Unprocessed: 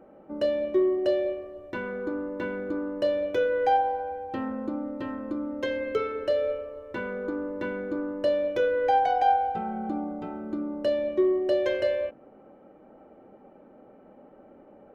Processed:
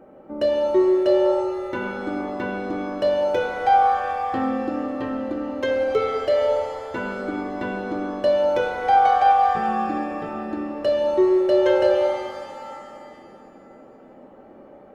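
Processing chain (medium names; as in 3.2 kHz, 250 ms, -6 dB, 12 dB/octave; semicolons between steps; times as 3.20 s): pitch-shifted reverb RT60 2.3 s, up +7 st, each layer -8 dB, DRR 3 dB; trim +4 dB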